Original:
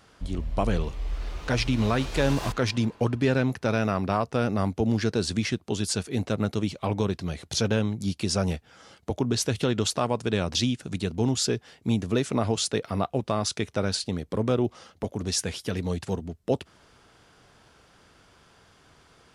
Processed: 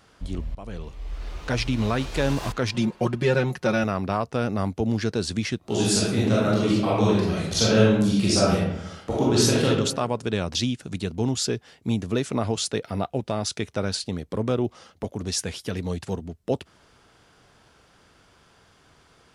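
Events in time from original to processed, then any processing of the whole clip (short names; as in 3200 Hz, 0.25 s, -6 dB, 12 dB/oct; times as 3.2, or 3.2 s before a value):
0.55–1.35 fade in linear, from -19 dB
2.74–3.84 comb 5.5 ms, depth 95%
5.58–9.66 reverb throw, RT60 0.87 s, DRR -7 dB
12.82–13.58 notch 1100 Hz, Q 6.3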